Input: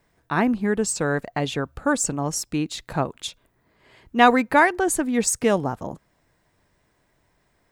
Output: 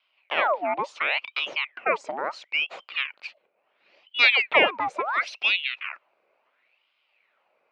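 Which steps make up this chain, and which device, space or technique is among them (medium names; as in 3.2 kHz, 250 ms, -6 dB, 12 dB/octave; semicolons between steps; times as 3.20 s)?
voice changer toy (ring modulator with a swept carrier 1.8 kHz, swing 75%, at 0.72 Hz; cabinet simulation 460–3600 Hz, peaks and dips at 590 Hz +6 dB, 1.7 kHz -4 dB, 2.4 kHz +5 dB, 3.4 kHz -5 dB); 2.89–4.23 s: peaking EQ 1.1 kHz -4.5 dB 2 oct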